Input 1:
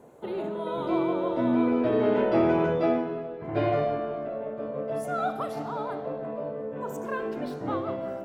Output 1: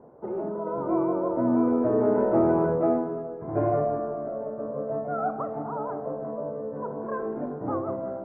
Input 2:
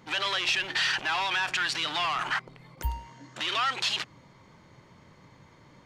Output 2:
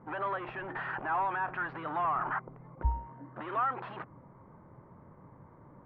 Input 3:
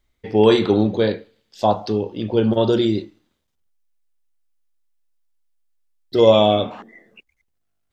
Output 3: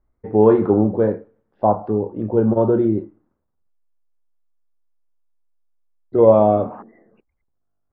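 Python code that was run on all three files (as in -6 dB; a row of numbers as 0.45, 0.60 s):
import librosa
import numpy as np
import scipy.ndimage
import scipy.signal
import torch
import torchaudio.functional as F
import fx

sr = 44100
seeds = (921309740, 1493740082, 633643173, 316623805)

y = scipy.signal.sosfilt(scipy.signal.butter(4, 1300.0, 'lowpass', fs=sr, output='sos'), x)
y = F.gain(torch.from_numpy(y), 1.0).numpy()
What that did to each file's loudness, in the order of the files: +1.0, -6.5, +0.5 LU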